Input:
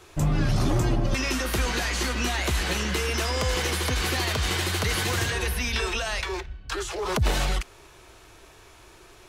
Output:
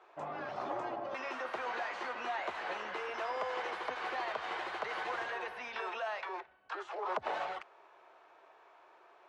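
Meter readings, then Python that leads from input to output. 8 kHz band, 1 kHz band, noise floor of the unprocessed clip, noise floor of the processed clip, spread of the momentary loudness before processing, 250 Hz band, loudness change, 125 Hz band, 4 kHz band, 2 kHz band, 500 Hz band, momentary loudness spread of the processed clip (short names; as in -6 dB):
-31.0 dB, -4.0 dB, -51 dBFS, -62 dBFS, 6 LU, -20.5 dB, -12.5 dB, under -35 dB, -19.5 dB, -10.5 dB, -9.0 dB, 5 LU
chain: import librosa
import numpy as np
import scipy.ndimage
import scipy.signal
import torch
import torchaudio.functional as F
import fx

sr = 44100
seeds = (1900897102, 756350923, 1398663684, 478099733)

y = fx.ladder_bandpass(x, sr, hz=910.0, resonance_pct=30)
y = y * librosa.db_to_amplitude(5.5)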